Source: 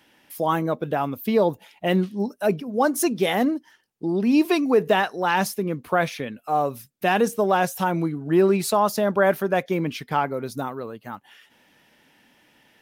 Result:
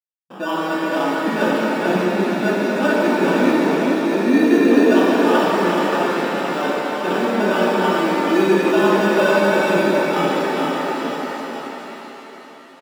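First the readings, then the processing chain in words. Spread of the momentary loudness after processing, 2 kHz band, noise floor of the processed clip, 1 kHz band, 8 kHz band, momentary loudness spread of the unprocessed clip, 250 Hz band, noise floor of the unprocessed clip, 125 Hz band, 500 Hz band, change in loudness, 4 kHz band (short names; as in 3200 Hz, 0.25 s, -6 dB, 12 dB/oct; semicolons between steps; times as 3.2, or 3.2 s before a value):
10 LU, +7.5 dB, -40 dBFS, +4.0 dB, -1.5 dB, 11 LU, +7.0 dB, -61 dBFS, +0.5 dB, +5.5 dB, +5.5 dB, +6.0 dB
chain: notch 720 Hz, Q 12; comb 3.2 ms, depth 67%; in parallel at -2 dB: compressor, threshold -31 dBFS, peak gain reduction 19.5 dB; on the sum: requantised 6-bit, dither none; bell 2300 Hz +11 dB 0.23 oct; sample-and-hold 21×; brick-wall FIR high-pass 160 Hz; tone controls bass +5 dB, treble -15 dB; on a send: echo 0.433 s -5 dB; on the sum: shimmer reverb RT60 3.9 s, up +7 st, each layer -8 dB, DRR -6 dB; gain -6.5 dB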